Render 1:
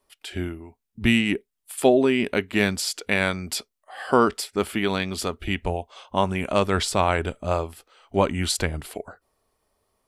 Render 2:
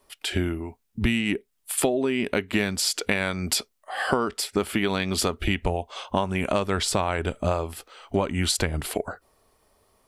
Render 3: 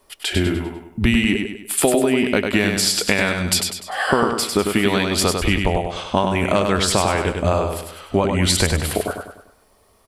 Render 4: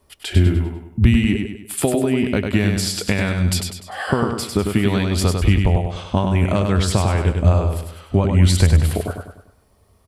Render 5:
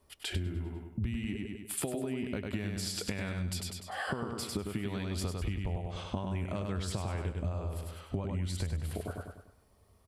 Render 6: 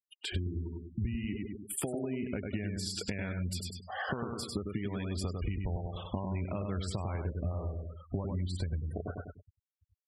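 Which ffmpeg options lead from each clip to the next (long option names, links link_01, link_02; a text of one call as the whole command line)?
ffmpeg -i in.wav -af "acompressor=threshold=-28dB:ratio=12,volume=8dB" out.wav
ffmpeg -i in.wav -af "aecho=1:1:99|198|297|396|495:0.562|0.242|0.104|0.0447|0.0192,volume=5.5dB" out.wav
ffmpeg -i in.wav -af "equalizer=frequency=91:width=0.55:gain=15,volume=-5.5dB" out.wav
ffmpeg -i in.wav -af "acompressor=threshold=-24dB:ratio=6,volume=-8dB" out.wav
ffmpeg -i in.wav -af "afftfilt=real='re*gte(hypot(re,im),0.01)':imag='im*gte(hypot(re,im),0.01)':win_size=1024:overlap=0.75" out.wav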